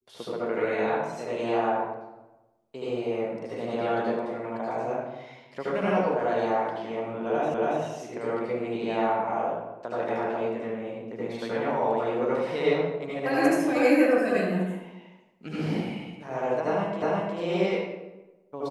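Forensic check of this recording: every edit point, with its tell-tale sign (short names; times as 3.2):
7.54 repeat of the last 0.28 s
17.02 repeat of the last 0.36 s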